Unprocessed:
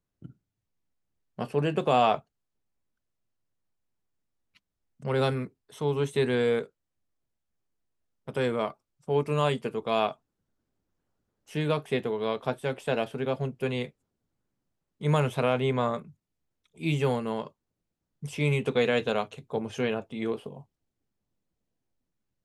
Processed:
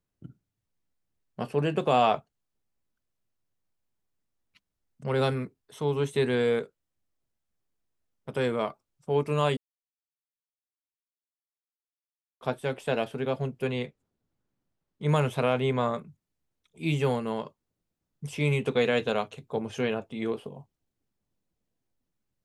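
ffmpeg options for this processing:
-filter_complex "[0:a]asettb=1/sr,asplit=3[s0][s1][s2];[s0]atrim=end=13.674[s3];[s1]atrim=start=13.67:end=15.09,asetpts=PTS-STARTPTS,afade=t=in:d=0.004:c=qsin,afade=t=out:st=1.416:d=0.004:c=qsin,highshelf=f=8000:g=-9.5[s4];[s2]atrim=start=15.086[s5];[s3][s4]acrossfade=d=0.004:c1=hsin:c2=qsin[s6];[s6][s5]acrossfade=d=0.004:c1=qsin:c2=hsin,asplit=3[s7][s8][s9];[s7]atrim=end=9.57,asetpts=PTS-STARTPTS,afade=t=out:st=9.566:d=0.004:c=hsin[s10];[s8]atrim=start=9.57:end=12.41,asetpts=PTS-STARTPTS,volume=0[s11];[s9]atrim=start=12.41,asetpts=PTS-STARTPTS,afade=t=in:d=0.004:c=hsin[s12];[s10][s11][s12]concat=n=3:v=0:a=1"

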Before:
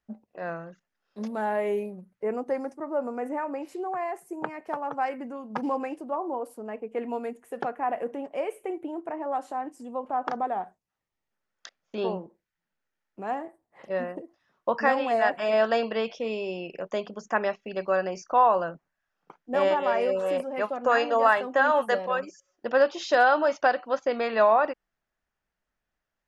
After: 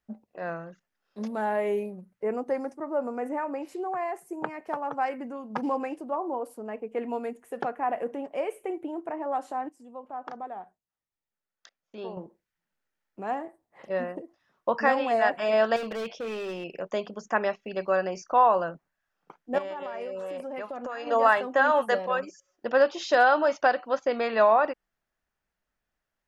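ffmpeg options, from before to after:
-filter_complex "[0:a]asettb=1/sr,asplit=3[s0][s1][s2];[s0]atrim=end=15.764[s3];[s1]atrim=start=15.76:end=16.64,asetpts=PTS-STARTPTS,afade=t=in:d=0.004:c=qsin,afade=t=out:st=0.876:d=0.004:c=qsin,volume=31.6,asoftclip=hard,volume=0.0316[s4];[s2]atrim=start=16.636[s5];[s3][s4]acrossfade=d=0.004:c1=hsin:c2=qsin[s6];[s6][s5]acrossfade=d=0.004:c1=qsin:c2=hsin,asettb=1/sr,asplit=3[s7][s8][s9];[s7]atrim=end=19.584[s10];[s8]atrim=start=19.58:end=21.07,asetpts=PTS-STARTPTS,afade=t=in:d=0.004:c=qsin,afade=t=out:st=1.486:d=0.004:c=qsin,acompressor=threshold=0.0282:ratio=16:attack=3.2:release=140:knee=1:detection=peak[s11];[s9]atrim=start=21.066[s12];[s10][s11]acrossfade=d=0.004:c1=hsin:c2=qsin[s13];[s13][s12]acrossfade=d=0.004:c1=qsin:c2=hsin,asplit=3[s14][s15][s16];[s14]atrim=end=9.692[s17];[s15]atrim=start=9.688:end=12.172,asetpts=PTS-STARTPTS,volume=0.355[s18];[s16]atrim=start=12.168[s19];[s17][s18]acrossfade=d=0.004:c1=hsin:c2=hsin[s20];[s20][s19]acrossfade=d=0.004:c1=hsin:c2=hsin"

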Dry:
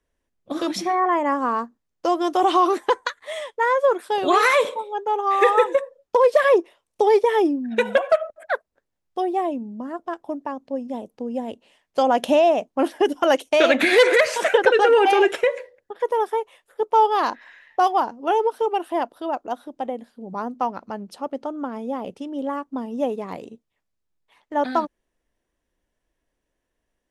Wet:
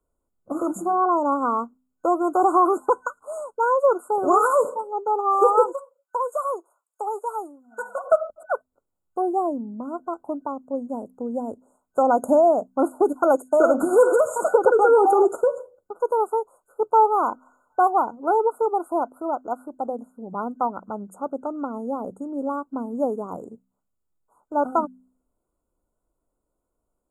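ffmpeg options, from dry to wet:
-filter_complex "[0:a]asplit=3[s0][s1][s2];[s0]afade=t=out:st=5.71:d=0.02[s3];[s1]highpass=1100,afade=t=in:st=5.71:d=0.02,afade=t=out:st=8.04:d=0.02[s4];[s2]afade=t=in:st=8.04:d=0.02[s5];[s3][s4][s5]amix=inputs=3:normalize=0,bandreject=f=63.84:t=h:w=4,bandreject=f=127.68:t=h:w=4,bandreject=f=191.52:t=h:w=4,bandreject=f=255.36:t=h:w=4,afftfilt=real='re*(1-between(b*sr/4096,1500,6600))':imag='im*(1-between(b*sr/4096,1500,6600))':win_size=4096:overlap=0.75"

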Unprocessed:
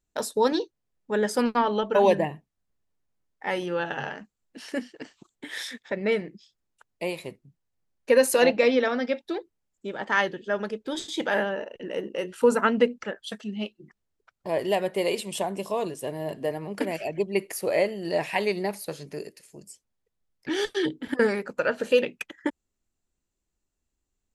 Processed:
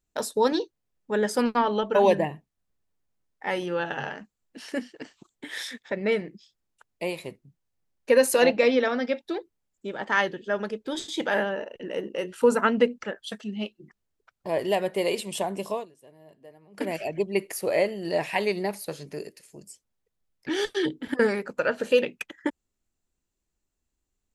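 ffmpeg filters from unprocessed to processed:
-filter_complex "[0:a]asplit=3[s0][s1][s2];[s0]atrim=end=15.86,asetpts=PTS-STARTPTS,afade=t=out:st=15.72:d=0.14:silence=0.0944061[s3];[s1]atrim=start=15.86:end=16.72,asetpts=PTS-STARTPTS,volume=0.0944[s4];[s2]atrim=start=16.72,asetpts=PTS-STARTPTS,afade=t=in:d=0.14:silence=0.0944061[s5];[s3][s4][s5]concat=n=3:v=0:a=1"

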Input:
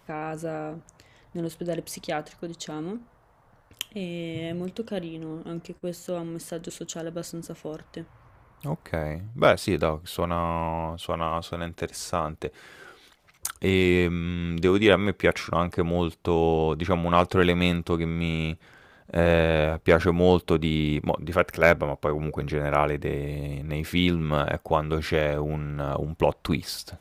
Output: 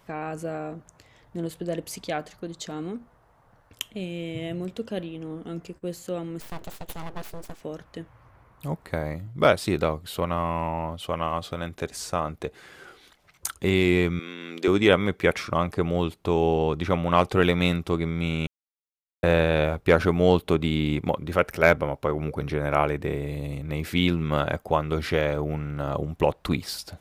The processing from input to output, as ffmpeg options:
-filter_complex "[0:a]asettb=1/sr,asplit=3[s0][s1][s2];[s0]atrim=end=6.404[s3];[s1]atrim=start=6.4:end=7.61,asetpts=PTS-STARTPTS,afade=t=in:d=0.004:c=qsin,afade=t=out:st=1.206:d=0.004:c=qsin,aeval=exprs='abs(val(0))':c=same[s4];[s2]atrim=start=7.606[s5];[s3][s4]acrossfade=d=0.004:c1=hsin:c2=qsin[s6];[s6][s5]acrossfade=d=0.004:c1=qsin:c2=hsin,asettb=1/sr,asplit=3[s7][s8][s9];[s7]atrim=end=14.194[s10];[s8]atrim=start=14.19:end=14.68,asetpts=PTS-STARTPTS,afade=t=in:d=0.004:c=qsin,afade=t=out:st=0.486:d=0.004:c=qsin,highpass=f=290:w=0.5412,highpass=f=290:w=1.3066[s11];[s9]atrim=start=14.676[s12];[s10][s11]acrossfade=d=0.004:c1=hsin:c2=qsin[s13];[s13][s12]acrossfade=d=0.004:c1=qsin:c2=hsin,asplit=3[s14][s15][s16];[s14]atrim=end=18.47,asetpts=PTS-STARTPTS,afade=t=out:st=18.466:d=0.004:c=hsin[s17];[s15]atrim=start=18.47:end=19.23,asetpts=PTS-STARTPTS,volume=0[s18];[s16]atrim=start=19.23,asetpts=PTS-STARTPTS,afade=t=in:d=0.004:c=hsin[s19];[s17][s18][s19]concat=n=3:v=0:a=1"

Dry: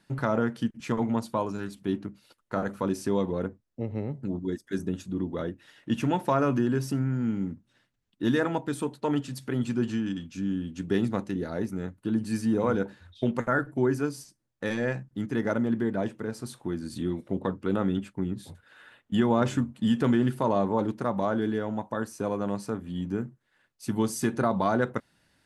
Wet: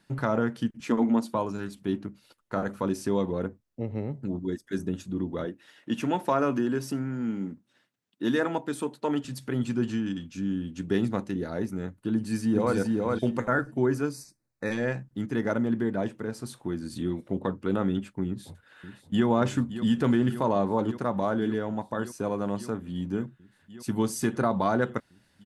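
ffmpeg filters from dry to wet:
-filter_complex "[0:a]asettb=1/sr,asplit=3[s0][s1][s2];[s0]atrim=end=0.874[s3];[s1]atrim=start=0.87:end=1.35,asetpts=PTS-STARTPTS,afade=t=in:d=0.004:c=qsin,afade=t=out:st=0.476:d=0.004:c=qsin,lowshelf=f=190:t=q:w=3:g=-8[s4];[s2]atrim=start=1.346[s5];[s3][s4]acrossfade=d=0.004:c1=hsin:c2=qsin[s6];[s6][s5]acrossfade=d=0.004:c1=qsin:c2=hsin,asettb=1/sr,asplit=3[s7][s8][s9];[s7]atrim=end=5.454[s10];[s8]atrim=start=5.45:end=9.25,asetpts=PTS-STARTPTS,afade=t=in:d=0.004:c=qsin,afade=t=out:st=3.796:d=0.004:c=qsin,highpass=190[s11];[s9]atrim=start=9.246[s12];[s10][s11]acrossfade=d=0.004:c1=hsin:c2=qsin[s13];[s13][s12]acrossfade=d=0.004:c1=qsin:c2=hsin,asplit=2[s14][s15];[s15]afade=t=in:st=12.13:d=0.01,afade=t=out:st=12.76:d=0.01,aecho=0:1:420|840|1260:0.794328|0.158866|0.0317731[s16];[s14][s16]amix=inputs=2:normalize=0,asettb=1/sr,asplit=3[s17][s18][s19];[s17]atrim=end=14.134[s20];[s18]atrim=start=14.13:end=14.72,asetpts=PTS-STARTPTS,afade=t=in:d=0.004:c=qsin,afade=t=out:st=0.586:d=0.004:c=qsin,asuperstop=centerf=3100:order=8:qfactor=2.8[s21];[s19]atrim=start=14.716[s22];[s20][s21]acrossfade=d=0.004:c1=hsin:c2=qsin[s23];[s23][s22]acrossfade=d=0.004:c1=qsin:c2=hsin,asplit=2[s24][s25];[s25]afade=t=in:st=18.26:d=0.01,afade=t=out:st=19.26:d=0.01,aecho=0:1:570|1140|1710|2280|2850|3420|3990|4560|5130|5700|6270|6840:0.251189|0.21351|0.181484|0.154261|0.131122|0.111454|0.0947357|0.0805253|0.0684465|0.0581795|0.0494526|0.0420347[s26];[s24][s26]amix=inputs=2:normalize=0"

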